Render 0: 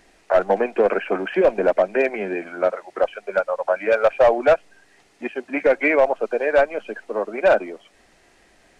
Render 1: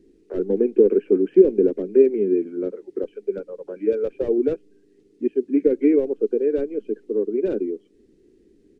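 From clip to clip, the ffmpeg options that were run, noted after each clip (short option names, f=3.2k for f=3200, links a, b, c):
-af "firequalizer=gain_entry='entry(110,0);entry(280,10);entry(420,10);entry(640,-26);entry(3600,-15)':delay=0.05:min_phase=1,volume=-2dB"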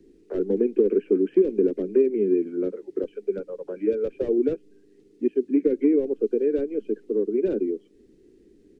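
-filter_complex "[0:a]acrossover=split=190|440|1400[a][b][c][d];[a]acompressor=threshold=-40dB:ratio=4[e];[b]acompressor=threshold=-18dB:ratio=4[f];[c]acompressor=threshold=-35dB:ratio=4[g];[d]acompressor=threshold=-52dB:ratio=4[h];[e][f][g][h]amix=inputs=4:normalize=0,volume=1dB"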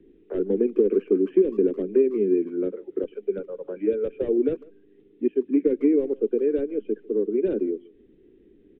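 -filter_complex "[0:a]aresample=8000,aresample=44100,asplit=2[a][b];[b]adelay=150,highpass=300,lowpass=3.4k,asoftclip=type=hard:threshold=-17dB,volume=-22dB[c];[a][c]amix=inputs=2:normalize=0"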